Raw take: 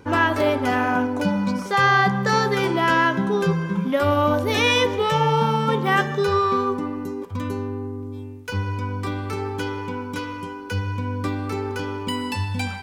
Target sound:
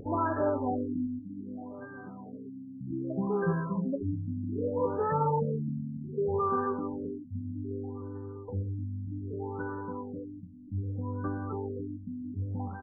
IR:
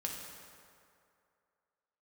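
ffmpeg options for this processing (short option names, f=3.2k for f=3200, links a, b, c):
-filter_complex "[0:a]acrossover=split=1100[a][b];[a]acompressor=mode=upward:threshold=-28dB:ratio=2.5[c];[c][b]amix=inputs=2:normalize=0,asettb=1/sr,asplit=3[d][e][f];[d]atrim=end=1.194[g];[e]atrim=start=1.19:end=2.81,asetpts=PTS-STARTPTS,afade=t=in:d=0.004:c=qsin,afade=t=out:st=1.616:d=0.004:c=qsin,asplit=3[h][i][j];[h]bandpass=f=270:t=q:w=8,volume=0dB[k];[i]bandpass=f=2.29k:t=q:w=8,volume=-6dB[l];[j]bandpass=f=3.01k:t=q:w=8,volume=-9dB[m];[k][l][m]amix=inputs=3:normalize=0[n];[f]atrim=start=2.806[o];[g][n]acrossfade=d=0.004:c1=hsin:c2=qsin[p];[p][o]acrossfade=d=0.004:c1=qsin:c2=hsin,asplit=2[q][r];[r]adelay=655,lowpass=f=2k:p=1,volume=-14dB,asplit=2[s][t];[t]adelay=655,lowpass=f=2k:p=1,volume=0.51,asplit=2[u][v];[v]adelay=655,lowpass=f=2k:p=1,volume=0.51,asplit=2[w][x];[x]adelay=655,lowpass=f=2k:p=1,volume=0.51,asplit=2[y][z];[z]adelay=655,lowpass=f=2k:p=1,volume=0.51[aa];[q][s][u][w][y][aa]amix=inputs=6:normalize=0,afftfilt=real='re*lt(b*sr/1024,260*pow(1800/260,0.5+0.5*sin(2*PI*0.64*pts/sr)))':imag='im*lt(b*sr/1024,260*pow(1800/260,0.5+0.5*sin(2*PI*0.64*pts/sr)))':win_size=1024:overlap=0.75,volume=-8dB"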